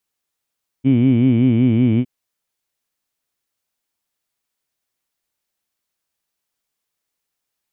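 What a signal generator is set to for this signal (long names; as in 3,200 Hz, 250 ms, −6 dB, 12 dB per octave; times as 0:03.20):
vowel by formant synthesis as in heed, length 1.21 s, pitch 127 Hz, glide −1.5 semitones, vibrato depth 1.35 semitones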